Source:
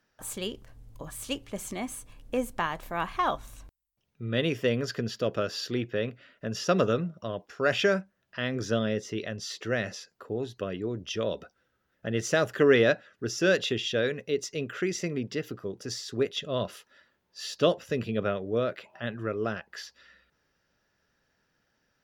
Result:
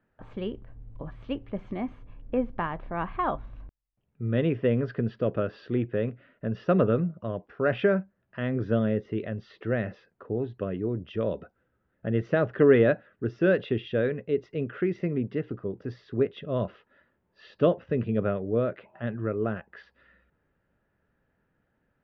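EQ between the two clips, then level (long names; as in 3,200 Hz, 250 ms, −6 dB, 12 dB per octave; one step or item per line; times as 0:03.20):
low-pass filter 2,600 Hz 12 dB per octave
high-frequency loss of the air 280 metres
low-shelf EQ 480 Hz +6.5 dB
−1.0 dB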